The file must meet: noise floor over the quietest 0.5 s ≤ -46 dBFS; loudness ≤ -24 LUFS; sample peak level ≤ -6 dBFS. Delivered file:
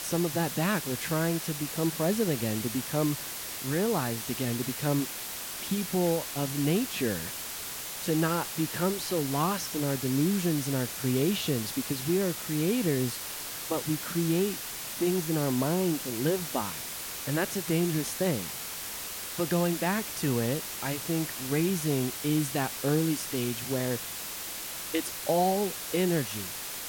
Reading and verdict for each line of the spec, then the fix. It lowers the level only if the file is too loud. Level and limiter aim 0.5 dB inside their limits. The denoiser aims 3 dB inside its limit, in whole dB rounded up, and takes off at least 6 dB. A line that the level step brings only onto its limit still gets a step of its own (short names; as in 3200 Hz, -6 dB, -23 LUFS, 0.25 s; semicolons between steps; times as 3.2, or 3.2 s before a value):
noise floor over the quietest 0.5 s -38 dBFS: fail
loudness -29.5 LUFS: OK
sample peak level -14.5 dBFS: OK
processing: denoiser 11 dB, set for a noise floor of -38 dBFS